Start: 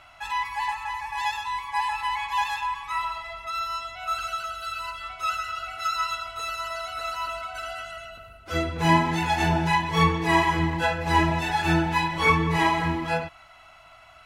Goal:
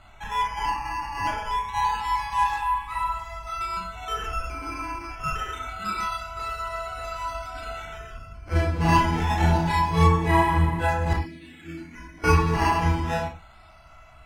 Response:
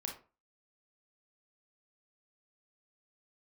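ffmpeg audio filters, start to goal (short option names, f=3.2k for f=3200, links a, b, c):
-filter_complex "[0:a]asettb=1/sr,asplit=3[a][b][c];[a]atrim=end=11.134[d];[b]atrim=start=11.13:end=12.24,asetpts=PTS-STARTPTS,afade=t=in:d=0.004:c=qsin,afade=t=out:st=1.106:d=0.004:c=qsin,asplit=3[e][f][g];[e]bandpass=f=270:t=q:w=8,volume=0dB[h];[f]bandpass=f=2.29k:t=q:w=8,volume=-6dB[i];[g]bandpass=f=3.01k:t=q:w=8,volume=-9dB[j];[h][i][j]amix=inputs=3:normalize=0[k];[c]atrim=start=12.236[l];[d][k]acrossfade=d=0.004:c1=hsin:c2=qsin[m];[m][l]acrossfade=d=0.004:c1=qsin:c2=hsin,acrusher=samples=8:mix=1:aa=0.000001:lfo=1:lforange=8:lforate=0.26,aemphasis=mode=reproduction:type=bsi[n];[1:a]atrim=start_sample=2205,atrim=end_sample=6174[o];[n][o]afir=irnorm=-1:irlink=0"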